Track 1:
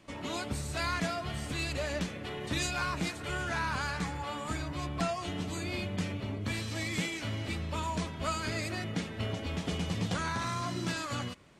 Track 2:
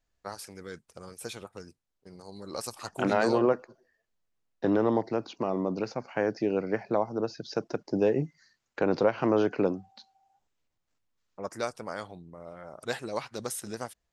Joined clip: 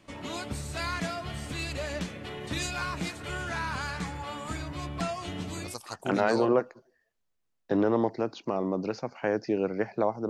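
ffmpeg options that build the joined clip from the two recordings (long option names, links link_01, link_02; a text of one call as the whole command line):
ffmpeg -i cue0.wav -i cue1.wav -filter_complex "[0:a]apad=whole_dur=10.29,atrim=end=10.29,atrim=end=5.77,asetpts=PTS-STARTPTS[link_01];[1:a]atrim=start=2.54:end=7.22,asetpts=PTS-STARTPTS[link_02];[link_01][link_02]acrossfade=duration=0.16:curve1=tri:curve2=tri" out.wav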